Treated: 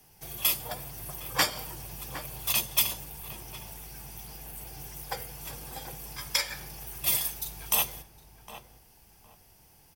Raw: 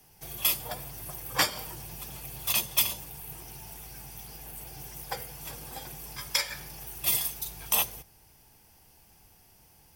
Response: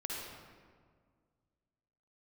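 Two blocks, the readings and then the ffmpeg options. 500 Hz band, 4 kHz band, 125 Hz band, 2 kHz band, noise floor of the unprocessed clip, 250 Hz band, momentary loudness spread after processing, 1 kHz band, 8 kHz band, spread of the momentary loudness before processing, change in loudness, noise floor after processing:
+0.5 dB, 0.0 dB, +1.0 dB, 0.0 dB, -59 dBFS, +0.5 dB, 16 LU, +0.5 dB, 0.0 dB, 16 LU, 0.0 dB, -59 dBFS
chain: -filter_complex "[0:a]asplit=2[s0][s1];[s1]adelay=761,lowpass=f=1300:p=1,volume=0.316,asplit=2[s2][s3];[s3]adelay=761,lowpass=f=1300:p=1,volume=0.25,asplit=2[s4][s5];[s5]adelay=761,lowpass=f=1300:p=1,volume=0.25[s6];[s0][s2][s4][s6]amix=inputs=4:normalize=0"

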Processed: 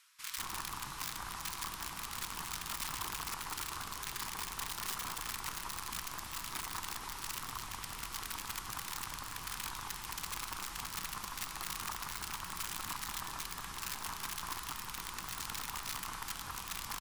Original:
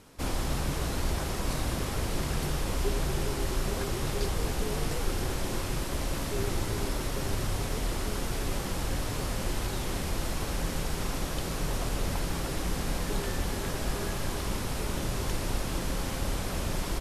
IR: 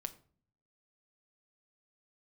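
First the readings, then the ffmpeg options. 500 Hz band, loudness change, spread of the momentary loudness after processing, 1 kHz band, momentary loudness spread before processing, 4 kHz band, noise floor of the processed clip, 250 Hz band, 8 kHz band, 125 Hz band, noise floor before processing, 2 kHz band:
-23.0 dB, -7.5 dB, 3 LU, -4.0 dB, 2 LU, -4.0 dB, -46 dBFS, -19.5 dB, -3.0 dB, -20.5 dB, -34 dBFS, -4.5 dB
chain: -filter_complex "[1:a]atrim=start_sample=2205[s0];[0:a][s0]afir=irnorm=-1:irlink=0,acrossover=split=390|3100[s1][s2][s3];[s3]acrusher=bits=6:mode=log:mix=0:aa=0.000001[s4];[s1][s2][s4]amix=inputs=3:normalize=0,aeval=exprs='(mod(16.8*val(0)+1,2)-1)/16.8':c=same,alimiter=level_in=1.58:limit=0.0631:level=0:latency=1,volume=0.631,lowshelf=f=770:t=q:w=3:g=-10.5,areverse,acompressor=mode=upward:threshold=0.01:ratio=2.5,areverse,acrossover=split=1500[s5][s6];[s5]adelay=190[s7];[s7][s6]amix=inputs=2:normalize=0,volume=0.631"

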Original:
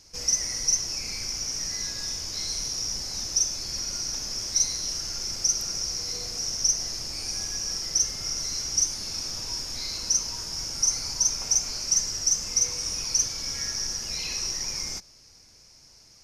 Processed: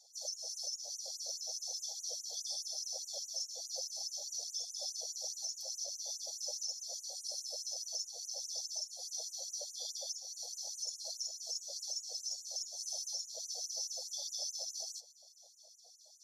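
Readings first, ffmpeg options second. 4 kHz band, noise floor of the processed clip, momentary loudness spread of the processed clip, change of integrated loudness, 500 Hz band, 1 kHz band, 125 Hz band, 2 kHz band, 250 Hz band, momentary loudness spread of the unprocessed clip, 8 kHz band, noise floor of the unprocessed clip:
-12.5 dB, -61 dBFS, 3 LU, -13.5 dB, -7.0 dB, -15.0 dB, under -40 dB, under -40 dB, under -40 dB, 7 LU, -14.0 dB, -54 dBFS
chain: -af "afftfilt=real='real(if(lt(b,1008),b+24*(1-2*mod(floor(b/24),2)),b),0)':imag='imag(if(lt(b,1008),b+24*(1-2*mod(floor(b/24),2)),b),0)':win_size=2048:overlap=0.75,areverse,acompressor=mode=upward:threshold=0.00631:ratio=2.5,areverse,equalizer=f=110:w=1.3:g=6,afftfilt=real='hypot(re,im)*cos(2*PI*random(0))':imag='hypot(re,im)*sin(2*PI*random(1))':win_size=512:overlap=0.75,flanger=delay=4.2:depth=5:regen=44:speed=0.44:shape=sinusoidal,afftfilt=real='re*(1-between(b*sr/4096,860,3200))':imag='im*(1-between(b*sr/4096,860,3200))':win_size=4096:overlap=0.75,alimiter=level_in=2:limit=0.0631:level=0:latency=1:release=225,volume=0.501,afftfilt=real='re*gte(b*sr/1024,450*pow(6400/450,0.5+0.5*sin(2*PI*4.8*pts/sr)))':imag='im*gte(b*sr/1024,450*pow(6400/450,0.5+0.5*sin(2*PI*4.8*pts/sr)))':win_size=1024:overlap=0.75,volume=1.12"

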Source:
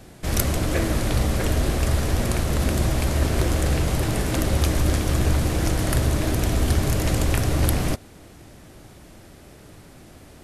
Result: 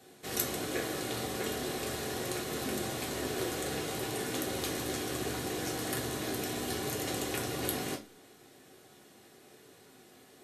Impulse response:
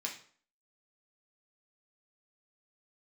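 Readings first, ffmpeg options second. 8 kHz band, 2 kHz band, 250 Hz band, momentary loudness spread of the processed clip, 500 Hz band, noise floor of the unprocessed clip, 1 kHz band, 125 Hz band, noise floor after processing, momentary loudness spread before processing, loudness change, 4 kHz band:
-7.0 dB, -8.0 dB, -11.0 dB, 2 LU, -8.0 dB, -47 dBFS, -8.0 dB, -21.5 dB, -58 dBFS, 2 LU, -11.5 dB, -6.0 dB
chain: -filter_complex "[1:a]atrim=start_sample=2205,asetrate=74970,aresample=44100[s0];[0:a][s0]afir=irnorm=-1:irlink=0,volume=0.668"

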